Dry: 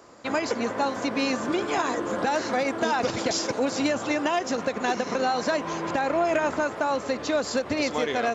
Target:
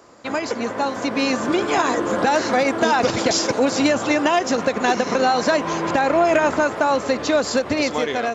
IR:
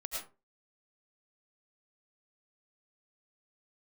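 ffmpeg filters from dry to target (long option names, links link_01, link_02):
-af "dynaudnorm=framelen=480:gausssize=5:maxgain=5dB,volume=2dB"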